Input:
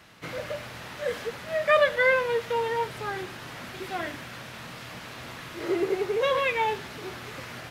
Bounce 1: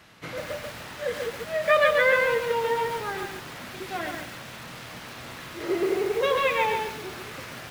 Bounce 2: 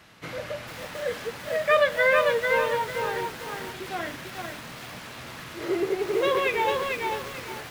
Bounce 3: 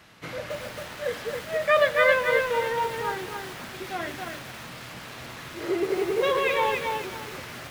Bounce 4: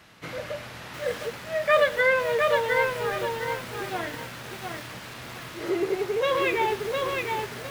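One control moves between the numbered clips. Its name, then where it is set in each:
bit-crushed delay, time: 138 ms, 446 ms, 272 ms, 709 ms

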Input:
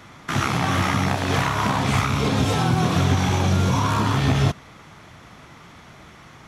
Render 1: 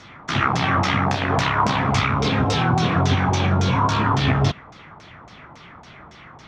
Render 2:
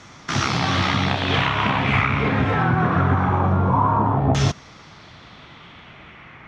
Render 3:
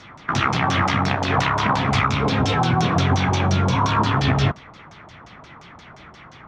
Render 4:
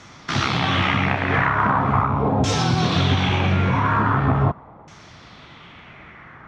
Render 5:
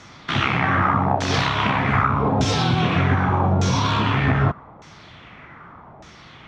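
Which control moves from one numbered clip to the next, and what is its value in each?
LFO low-pass, rate: 3.6 Hz, 0.23 Hz, 5.7 Hz, 0.41 Hz, 0.83 Hz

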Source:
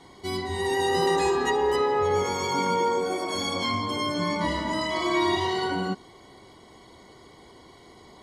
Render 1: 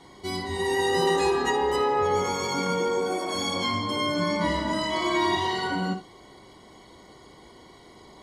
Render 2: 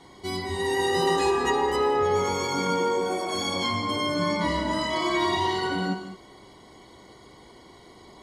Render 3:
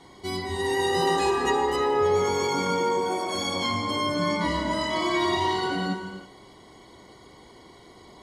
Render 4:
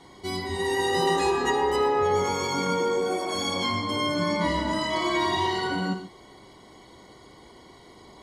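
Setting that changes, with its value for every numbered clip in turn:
gated-style reverb, gate: 100 ms, 240 ms, 370 ms, 160 ms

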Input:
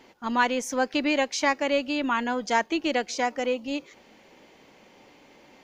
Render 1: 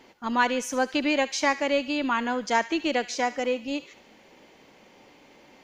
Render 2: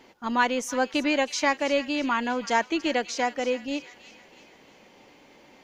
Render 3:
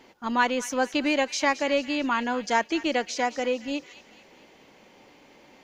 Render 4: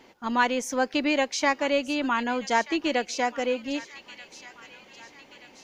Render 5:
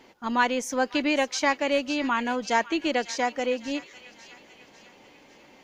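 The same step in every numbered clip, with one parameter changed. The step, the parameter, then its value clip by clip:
feedback echo behind a high-pass, time: 72 ms, 323 ms, 220 ms, 1232 ms, 549 ms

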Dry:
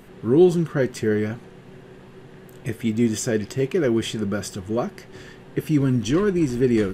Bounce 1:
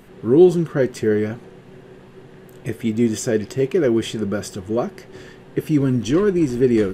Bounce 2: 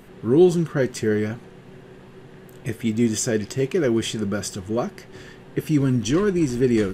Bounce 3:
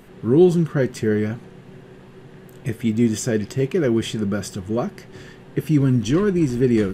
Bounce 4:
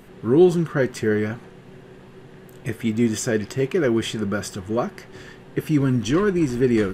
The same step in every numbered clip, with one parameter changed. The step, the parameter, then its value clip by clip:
dynamic bell, frequency: 440 Hz, 6.6 kHz, 150 Hz, 1.3 kHz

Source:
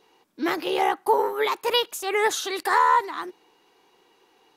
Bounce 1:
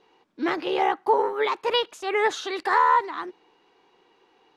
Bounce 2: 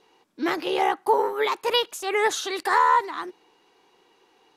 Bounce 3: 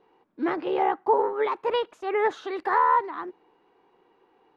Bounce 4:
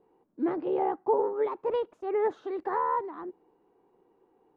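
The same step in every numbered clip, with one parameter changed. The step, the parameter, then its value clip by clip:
Bessel low-pass, frequency: 3.6 kHz, 10 kHz, 1.3 kHz, 500 Hz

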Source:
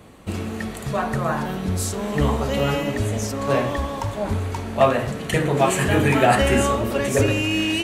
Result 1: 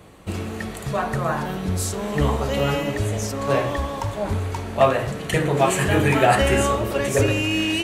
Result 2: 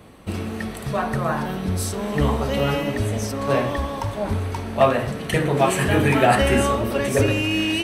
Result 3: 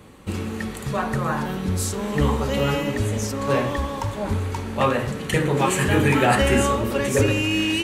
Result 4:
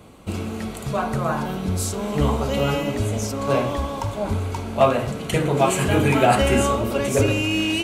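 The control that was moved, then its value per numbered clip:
band-stop, frequency: 240 Hz, 7 kHz, 670 Hz, 1.8 kHz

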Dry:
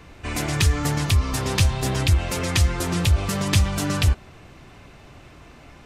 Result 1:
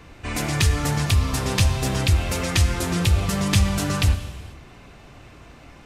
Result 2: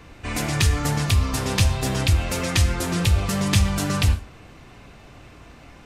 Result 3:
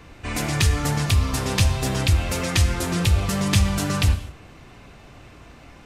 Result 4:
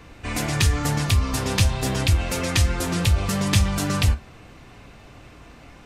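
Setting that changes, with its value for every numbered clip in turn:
gated-style reverb, gate: 510 ms, 170 ms, 270 ms, 80 ms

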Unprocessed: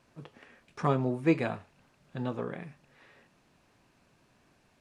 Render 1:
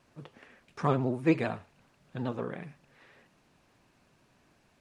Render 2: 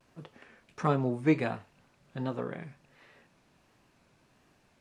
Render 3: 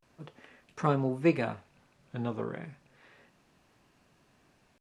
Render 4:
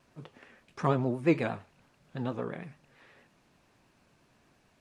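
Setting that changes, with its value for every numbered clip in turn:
vibrato, rate: 16 Hz, 1.4 Hz, 0.32 Hz, 8.8 Hz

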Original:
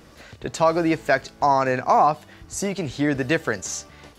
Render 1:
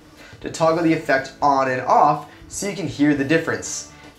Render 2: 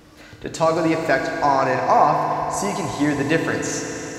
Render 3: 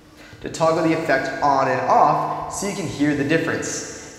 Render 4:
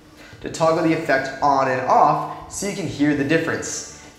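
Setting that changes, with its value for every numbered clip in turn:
FDN reverb, RT60: 0.38 s, 4.6 s, 2 s, 0.98 s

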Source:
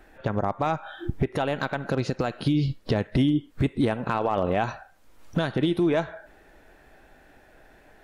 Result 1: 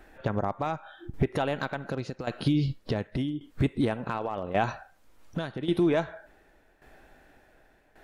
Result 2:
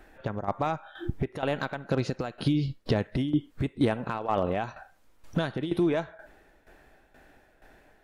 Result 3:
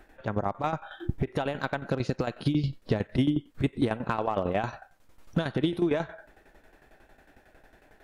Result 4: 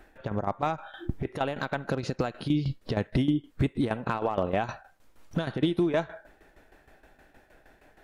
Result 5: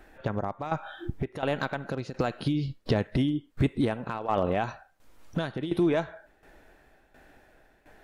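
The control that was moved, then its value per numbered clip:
tremolo, rate: 0.88 Hz, 2.1 Hz, 11 Hz, 6.4 Hz, 1.4 Hz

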